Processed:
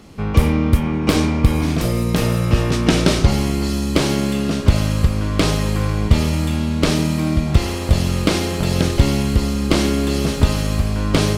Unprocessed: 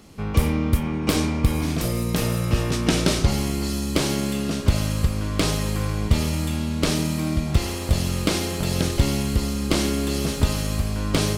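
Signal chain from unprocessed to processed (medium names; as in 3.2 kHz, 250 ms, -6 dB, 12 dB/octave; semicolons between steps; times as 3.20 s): treble shelf 5.8 kHz -7.5 dB; trim +5.5 dB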